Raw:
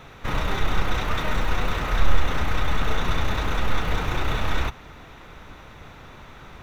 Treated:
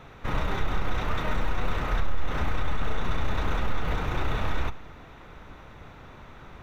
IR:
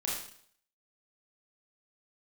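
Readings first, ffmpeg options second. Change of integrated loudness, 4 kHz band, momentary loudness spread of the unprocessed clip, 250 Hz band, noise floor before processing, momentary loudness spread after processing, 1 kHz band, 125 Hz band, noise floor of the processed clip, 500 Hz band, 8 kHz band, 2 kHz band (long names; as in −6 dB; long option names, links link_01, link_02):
−4.5 dB, −7.5 dB, 19 LU, −3.5 dB, −45 dBFS, 17 LU, −4.0 dB, −3.5 dB, −48 dBFS, −3.5 dB, can't be measured, −5.5 dB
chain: -filter_complex "[0:a]asplit=2[link_01][link_02];[1:a]atrim=start_sample=2205[link_03];[link_02][link_03]afir=irnorm=-1:irlink=0,volume=-22dB[link_04];[link_01][link_04]amix=inputs=2:normalize=0,alimiter=limit=-12.5dB:level=0:latency=1:release=106,highshelf=frequency=2600:gain=-7,volume=-2.5dB"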